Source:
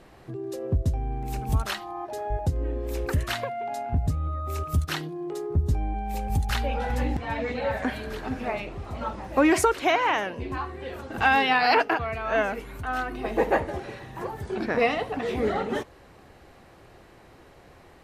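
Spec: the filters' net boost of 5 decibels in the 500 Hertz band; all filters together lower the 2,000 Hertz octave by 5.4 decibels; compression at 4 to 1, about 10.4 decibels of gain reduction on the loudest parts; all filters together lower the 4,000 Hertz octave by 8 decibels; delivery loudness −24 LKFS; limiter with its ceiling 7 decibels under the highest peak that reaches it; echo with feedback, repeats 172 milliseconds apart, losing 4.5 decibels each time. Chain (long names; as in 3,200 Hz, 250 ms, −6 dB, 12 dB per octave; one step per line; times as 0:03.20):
parametric band 500 Hz +6.5 dB
parametric band 2,000 Hz −5.5 dB
parametric band 4,000 Hz −9 dB
downward compressor 4 to 1, threshold −25 dBFS
brickwall limiter −20.5 dBFS
repeating echo 172 ms, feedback 60%, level −4.5 dB
level +5 dB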